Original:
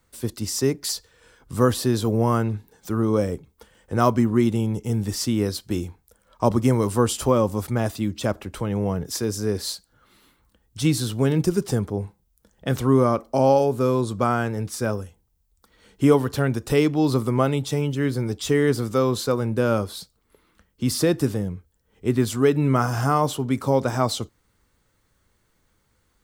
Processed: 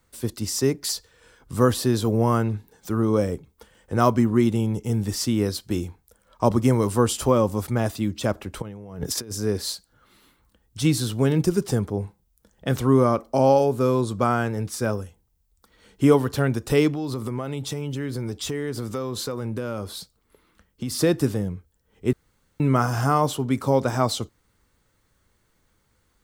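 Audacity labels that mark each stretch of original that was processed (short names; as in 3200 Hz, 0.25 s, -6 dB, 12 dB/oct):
8.620000	9.320000	negative-ratio compressor -31 dBFS, ratio -0.5
16.920000	20.990000	compressor 5:1, threshold -25 dBFS
22.130000	22.600000	room tone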